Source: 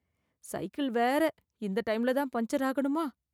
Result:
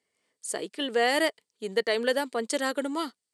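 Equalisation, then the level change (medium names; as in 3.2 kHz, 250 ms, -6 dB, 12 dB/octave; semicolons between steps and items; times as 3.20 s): dynamic bell 3.1 kHz, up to +3 dB, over -49 dBFS, Q 1.1; cabinet simulation 300–9800 Hz, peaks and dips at 440 Hz +8 dB, 1.9 kHz +5 dB, 3.1 kHz +4 dB, 4.6 kHz +8 dB, 8.4 kHz +9 dB; treble shelf 4.2 kHz +10.5 dB; 0.0 dB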